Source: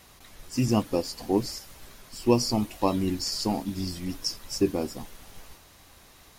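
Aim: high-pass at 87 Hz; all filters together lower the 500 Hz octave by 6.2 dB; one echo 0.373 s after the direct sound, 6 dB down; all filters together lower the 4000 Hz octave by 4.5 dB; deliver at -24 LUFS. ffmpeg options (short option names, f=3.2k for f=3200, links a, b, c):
-af "highpass=87,equalizer=f=500:t=o:g=-8.5,equalizer=f=4k:t=o:g=-6.5,aecho=1:1:373:0.501,volume=6.5dB"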